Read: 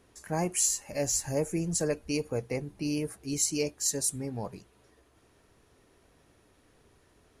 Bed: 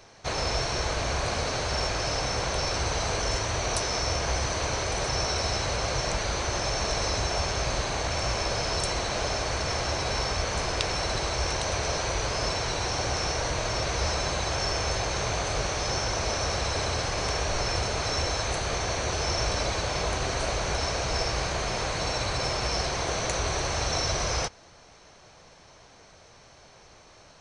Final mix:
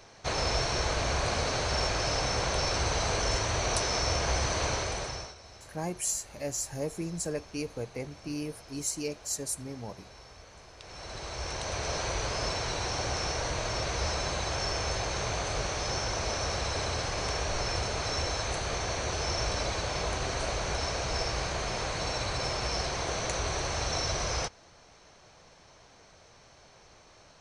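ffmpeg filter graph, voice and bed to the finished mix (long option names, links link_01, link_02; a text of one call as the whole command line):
ffmpeg -i stem1.wav -i stem2.wav -filter_complex "[0:a]adelay=5450,volume=-4.5dB[link_01];[1:a]volume=18.5dB,afade=type=out:start_time=4.68:duration=0.67:silence=0.0794328,afade=type=in:start_time=10.78:duration=1.24:silence=0.105925[link_02];[link_01][link_02]amix=inputs=2:normalize=0" out.wav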